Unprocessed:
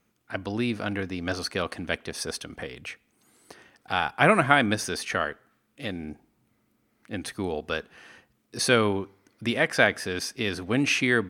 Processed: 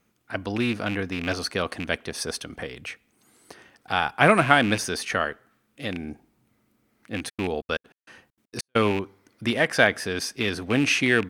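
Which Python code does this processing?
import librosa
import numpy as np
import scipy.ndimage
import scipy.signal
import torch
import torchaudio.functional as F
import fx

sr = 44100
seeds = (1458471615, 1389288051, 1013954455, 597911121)

y = fx.rattle_buzz(x, sr, strikes_db=-33.0, level_db=-22.0)
y = fx.step_gate(y, sr, bpm=197, pattern='x.x.x..xx', floor_db=-60.0, edge_ms=4.5, at=(7.28, 8.75), fade=0.02)
y = F.gain(torch.from_numpy(y), 2.0).numpy()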